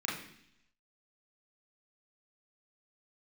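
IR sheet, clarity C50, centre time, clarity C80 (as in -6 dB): 5.0 dB, 45 ms, 8.0 dB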